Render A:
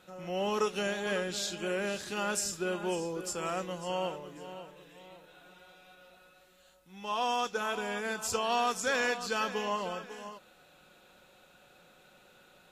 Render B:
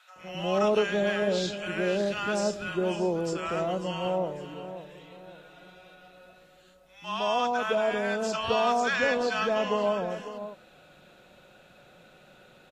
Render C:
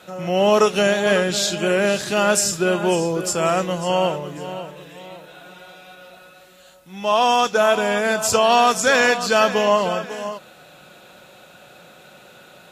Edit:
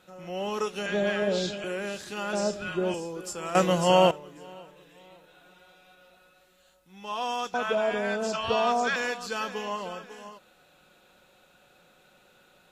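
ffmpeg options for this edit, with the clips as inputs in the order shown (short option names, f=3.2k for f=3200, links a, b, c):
-filter_complex "[1:a]asplit=3[a][b][c];[0:a]asplit=5[d][e][f][g][h];[d]atrim=end=0.862[i];[a]atrim=start=0.858:end=1.642[j];[e]atrim=start=1.638:end=2.332[k];[b]atrim=start=2.328:end=2.942[l];[f]atrim=start=2.938:end=3.552[m];[2:a]atrim=start=3.548:end=4.112[n];[g]atrim=start=4.108:end=7.542[o];[c]atrim=start=7.538:end=8.962[p];[h]atrim=start=8.958[q];[i][j]acrossfade=d=0.004:c1=hsin:c2=hsin[r];[r][k]acrossfade=d=0.004:c1=hsin:c2=hsin[s];[s][l]acrossfade=d=0.004:c1=hsin:c2=hsin[t];[t][m]acrossfade=d=0.004:c1=hsin:c2=hsin[u];[u][n]acrossfade=d=0.004:c1=hsin:c2=hsin[v];[v][o]acrossfade=d=0.004:c1=hsin:c2=hsin[w];[w][p]acrossfade=d=0.004:c1=hsin:c2=hsin[x];[x][q]acrossfade=d=0.004:c1=hsin:c2=hsin"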